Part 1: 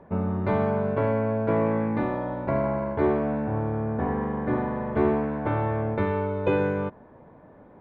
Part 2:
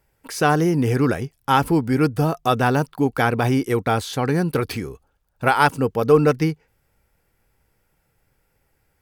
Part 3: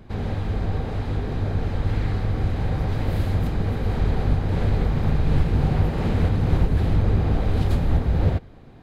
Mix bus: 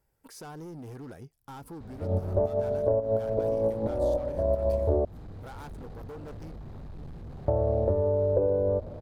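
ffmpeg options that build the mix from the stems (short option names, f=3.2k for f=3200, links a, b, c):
-filter_complex "[0:a]lowpass=f=580:t=q:w=5.3,lowshelf=f=100:t=q:w=3:g=12.5,adelay=1900,volume=-0.5dB,asplit=3[a][b][c];[a]atrim=end=5.05,asetpts=PTS-STARTPTS,afade=t=out:st=5.046:d=0.004:c=hsin[d];[b]atrim=start=5.05:end=7.48,asetpts=PTS-STARTPTS,volume=0[e];[c]atrim=start=7.48,asetpts=PTS-STARTPTS,afade=t=in:d=0.004:c=hsin[f];[d][e][f]concat=n=3:v=0:a=1[g];[1:a]acompressor=threshold=-24dB:ratio=2,volume=-8dB,asplit=2[h][i];[2:a]adelay=1700,volume=-10dB[j];[i]apad=whole_len=428061[k];[g][k]sidechaincompress=threshold=-40dB:ratio=8:attack=16:release=107[l];[h][j]amix=inputs=2:normalize=0,asoftclip=type=hard:threshold=-31dB,alimiter=level_in=14.5dB:limit=-24dB:level=0:latency=1:release=185,volume=-14.5dB,volume=0dB[m];[l][m]amix=inputs=2:normalize=0,equalizer=f=2.4k:t=o:w=1.3:g=-7,acompressor=threshold=-21dB:ratio=12"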